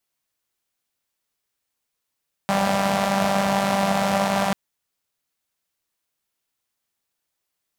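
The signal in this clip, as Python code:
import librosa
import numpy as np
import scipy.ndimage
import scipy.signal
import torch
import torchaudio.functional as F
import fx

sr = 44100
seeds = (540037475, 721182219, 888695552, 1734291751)

y = fx.engine_four(sr, seeds[0], length_s=2.04, rpm=5900, resonances_hz=(190.0, 660.0))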